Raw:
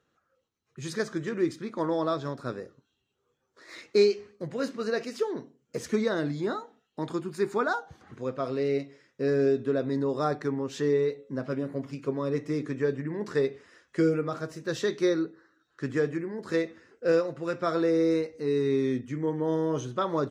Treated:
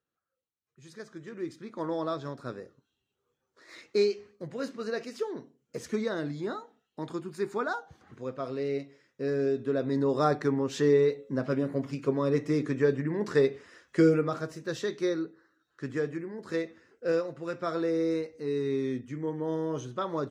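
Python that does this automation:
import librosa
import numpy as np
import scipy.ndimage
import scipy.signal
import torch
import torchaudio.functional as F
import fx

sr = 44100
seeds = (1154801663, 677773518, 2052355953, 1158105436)

y = fx.gain(x, sr, db=fx.line((0.87, -15.5), (1.9, -4.0), (9.49, -4.0), (10.17, 2.5), (14.16, 2.5), (14.85, -4.0)))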